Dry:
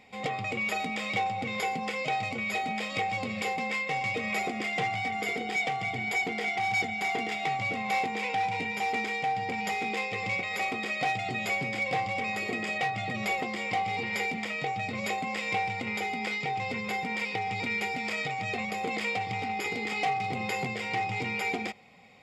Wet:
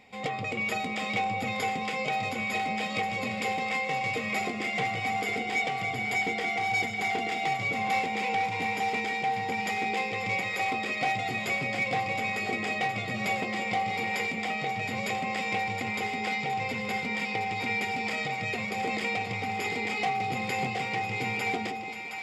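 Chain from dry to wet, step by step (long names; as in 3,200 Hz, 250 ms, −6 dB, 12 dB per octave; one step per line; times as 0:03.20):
echo with a time of its own for lows and highs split 620 Hz, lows 171 ms, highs 717 ms, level −7 dB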